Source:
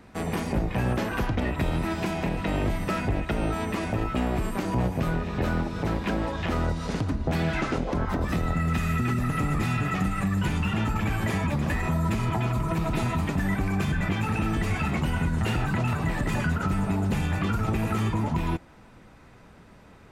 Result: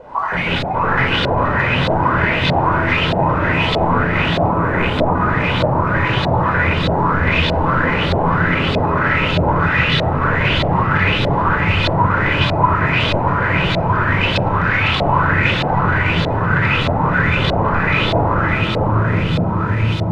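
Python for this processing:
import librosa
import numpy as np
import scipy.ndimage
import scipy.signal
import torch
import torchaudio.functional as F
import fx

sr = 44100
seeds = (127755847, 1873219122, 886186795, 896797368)

p1 = fx.spec_dropout(x, sr, seeds[0], share_pct=60)
p2 = scipy.signal.sosfilt(scipy.signal.butter(4, 75.0, 'highpass', fs=sr, output='sos'), p1)
p3 = p2 + fx.echo_diffused(p2, sr, ms=801, feedback_pct=57, wet_db=-5, dry=0)
p4 = fx.quant_dither(p3, sr, seeds[1], bits=8, dither='triangular')
p5 = fx.spec_box(p4, sr, start_s=4.48, length_s=0.67, low_hz=1300.0, high_hz=6700.0, gain_db=-7)
p6 = fx.fold_sine(p5, sr, drive_db=18, ceiling_db=-13.5)
p7 = p5 + (p6 * 10.0 ** (-3.0 / 20.0))
p8 = fx.room_shoebox(p7, sr, seeds[2], volume_m3=3200.0, walls='furnished', distance_m=4.9)
p9 = fx.filter_lfo_lowpass(p8, sr, shape='saw_up', hz=1.6, low_hz=630.0, high_hz=3900.0, q=4.7)
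y = p9 * 10.0 ** (-6.0 / 20.0)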